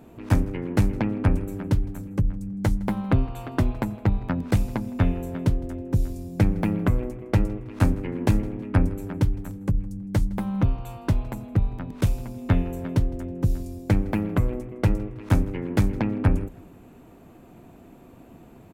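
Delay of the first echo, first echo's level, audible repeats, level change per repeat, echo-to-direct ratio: 0.161 s, -23.0 dB, 2, -8.5 dB, -22.5 dB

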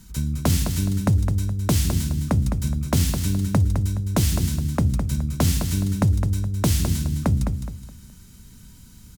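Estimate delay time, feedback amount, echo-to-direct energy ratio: 0.21 s, 31%, -7.0 dB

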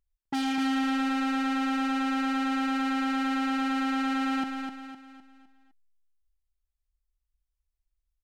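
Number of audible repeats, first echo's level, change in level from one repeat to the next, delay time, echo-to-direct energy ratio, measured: 4, -6.0 dB, -7.5 dB, 0.255 s, -5.0 dB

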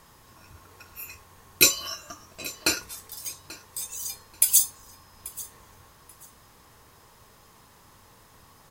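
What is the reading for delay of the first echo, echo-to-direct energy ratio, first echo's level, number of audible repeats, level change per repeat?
0.836 s, -19.0 dB, -19.0 dB, 2, -13.0 dB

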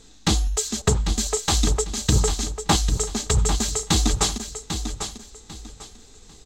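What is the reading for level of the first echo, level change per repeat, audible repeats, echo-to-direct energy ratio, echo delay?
-8.5 dB, -11.5 dB, 3, -8.0 dB, 0.796 s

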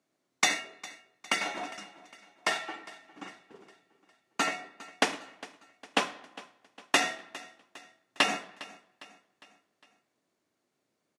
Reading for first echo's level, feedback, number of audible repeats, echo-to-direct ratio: -19.0 dB, 49%, 3, -18.0 dB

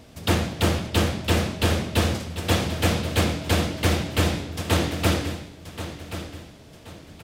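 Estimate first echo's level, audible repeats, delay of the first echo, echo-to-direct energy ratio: -12.0 dB, 3, 1.079 s, -11.5 dB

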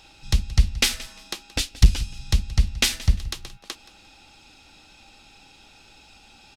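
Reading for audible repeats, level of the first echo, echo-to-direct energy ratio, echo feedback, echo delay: 2, -19.0 dB, -19.0 dB, 24%, 0.175 s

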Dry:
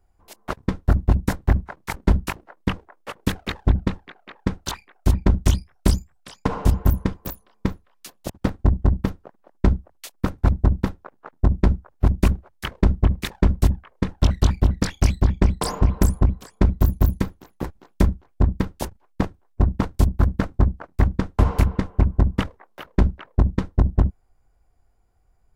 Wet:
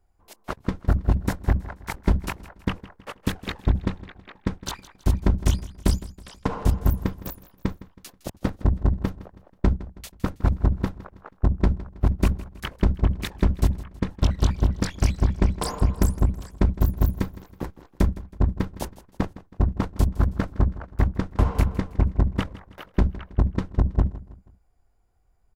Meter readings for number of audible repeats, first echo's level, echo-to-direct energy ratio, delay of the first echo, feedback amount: 3, -17.5 dB, -16.5 dB, 0.161 s, 41%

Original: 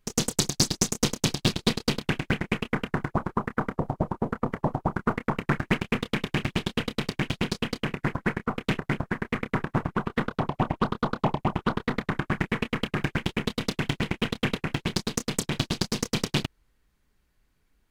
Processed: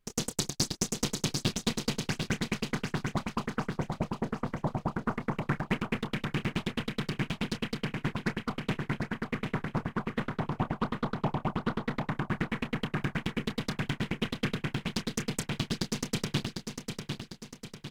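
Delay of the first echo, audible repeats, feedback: 0.75 s, 5, 48%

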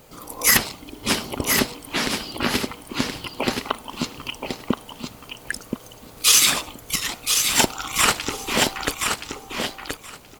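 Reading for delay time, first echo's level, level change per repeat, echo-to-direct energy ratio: 1.025 s, -5.5 dB, -16.5 dB, -5.5 dB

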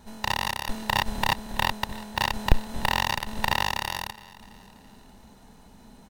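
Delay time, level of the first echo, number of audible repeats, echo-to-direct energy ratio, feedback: 0.332 s, -20.0 dB, 3, -19.0 dB, 50%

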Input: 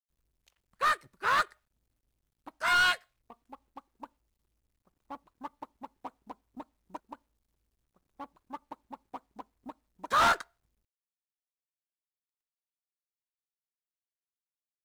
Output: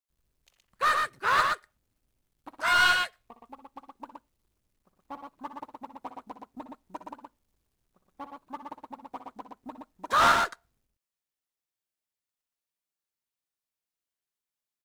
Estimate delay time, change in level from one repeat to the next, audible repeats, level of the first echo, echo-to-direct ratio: 60 ms, +7.5 dB, 2, -11.5 dB, -3.0 dB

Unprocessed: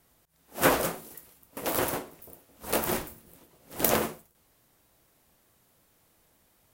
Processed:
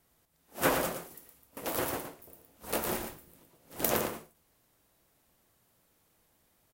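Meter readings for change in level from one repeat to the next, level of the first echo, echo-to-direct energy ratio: no steady repeat, -7.0 dB, -7.0 dB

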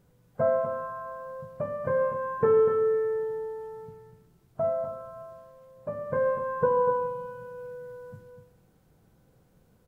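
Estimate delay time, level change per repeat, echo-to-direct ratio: 0.246 s, no steady repeat, -8.5 dB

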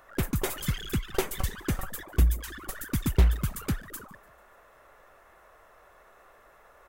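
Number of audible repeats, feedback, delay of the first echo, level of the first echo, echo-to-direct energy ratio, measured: 3, 57%, 0.147 s, -24.0 dB, -22.5 dB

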